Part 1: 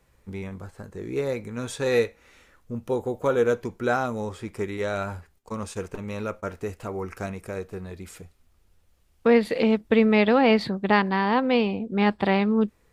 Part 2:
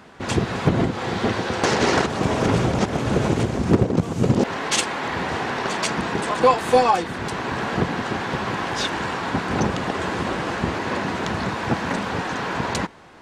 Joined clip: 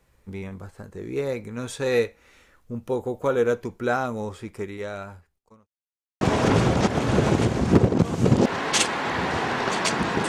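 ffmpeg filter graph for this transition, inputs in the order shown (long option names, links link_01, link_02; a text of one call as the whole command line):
ffmpeg -i cue0.wav -i cue1.wav -filter_complex "[0:a]apad=whole_dur=10.28,atrim=end=10.28,asplit=2[link_01][link_02];[link_01]atrim=end=5.67,asetpts=PTS-STARTPTS,afade=type=out:start_time=4.27:duration=1.4[link_03];[link_02]atrim=start=5.67:end=6.21,asetpts=PTS-STARTPTS,volume=0[link_04];[1:a]atrim=start=2.19:end=6.26,asetpts=PTS-STARTPTS,afade=type=in:duration=0.004:curve=hsin[link_05];[link_03][link_04][link_05]concat=n=3:v=0:a=1" out.wav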